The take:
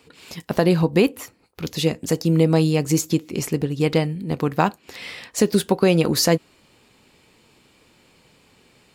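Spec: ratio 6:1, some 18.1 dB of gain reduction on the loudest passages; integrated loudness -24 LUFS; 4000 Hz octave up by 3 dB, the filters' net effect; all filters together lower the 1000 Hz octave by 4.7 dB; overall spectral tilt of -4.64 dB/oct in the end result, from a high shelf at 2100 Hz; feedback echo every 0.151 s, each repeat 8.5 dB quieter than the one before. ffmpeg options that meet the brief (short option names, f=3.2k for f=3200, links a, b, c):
-af "equalizer=f=1k:t=o:g=-6,highshelf=f=2.1k:g=-4.5,equalizer=f=4k:t=o:g=8.5,acompressor=threshold=-33dB:ratio=6,aecho=1:1:151|302|453|604:0.376|0.143|0.0543|0.0206,volume=12dB"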